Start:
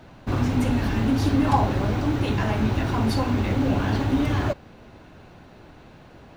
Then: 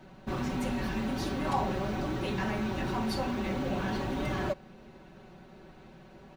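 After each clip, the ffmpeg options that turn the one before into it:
-filter_complex "[0:a]equalizer=f=280:t=o:w=2:g=3,aecho=1:1:5.3:0.77,acrossover=split=620[s0][s1];[s0]alimiter=limit=0.119:level=0:latency=1[s2];[s2][s1]amix=inputs=2:normalize=0,volume=0.398"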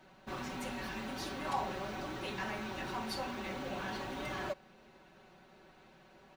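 -af "lowshelf=f=410:g=-11.5,volume=0.75"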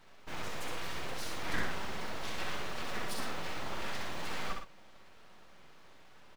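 -filter_complex "[0:a]aeval=exprs='abs(val(0))':c=same,asplit=2[s0][s1];[s1]aecho=0:1:64.14|113.7:0.631|0.355[s2];[s0][s2]amix=inputs=2:normalize=0,volume=1.26"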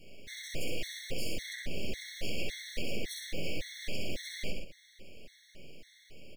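-af "asuperstop=centerf=1100:order=8:qfactor=0.8,acompressor=threshold=0.0178:ratio=6,afftfilt=real='re*gt(sin(2*PI*1.8*pts/sr)*(1-2*mod(floor(b*sr/1024/1100),2)),0)':imag='im*gt(sin(2*PI*1.8*pts/sr)*(1-2*mod(floor(b*sr/1024/1100),2)),0)':win_size=1024:overlap=0.75,volume=2.82"

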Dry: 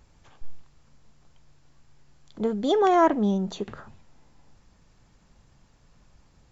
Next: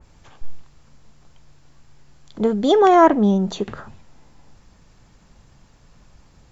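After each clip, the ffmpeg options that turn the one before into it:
-af "adynamicequalizer=threshold=0.0112:dfrequency=2300:dqfactor=0.7:tfrequency=2300:tqfactor=0.7:attack=5:release=100:ratio=0.375:range=2:mode=cutabove:tftype=highshelf,volume=2.24"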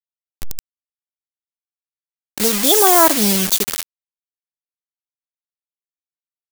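-filter_complex "[0:a]asplit=2[s0][s1];[s1]alimiter=limit=0.211:level=0:latency=1:release=201,volume=1.06[s2];[s0][s2]amix=inputs=2:normalize=0,acrusher=bits=3:mix=0:aa=0.000001,crystalizer=i=8:c=0,volume=0.422"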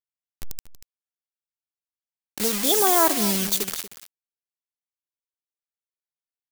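-af "aecho=1:1:236:0.2,volume=0.447"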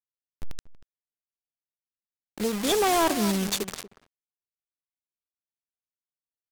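-filter_complex "[0:a]asplit=2[s0][s1];[s1]aeval=exprs='sgn(val(0))*max(abs(val(0))-0.0119,0)':c=same,volume=0.501[s2];[s0][s2]amix=inputs=2:normalize=0,adynamicsmooth=sensitivity=7:basefreq=500,asoftclip=type=hard:threshold=0.133,volume=0.841"

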